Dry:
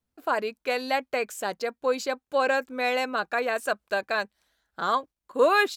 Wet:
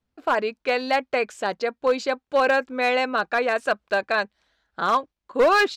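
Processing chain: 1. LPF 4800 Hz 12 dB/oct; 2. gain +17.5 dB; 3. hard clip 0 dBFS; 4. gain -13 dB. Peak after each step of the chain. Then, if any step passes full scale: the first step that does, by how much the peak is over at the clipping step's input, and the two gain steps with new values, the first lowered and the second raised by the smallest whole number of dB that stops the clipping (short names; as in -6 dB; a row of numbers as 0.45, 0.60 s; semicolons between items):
-9.5, +8.0, 0.0, -13.0 dBFS; step 2, 8.0 dB; step 2 +9.5 dB, step 4 -5 dB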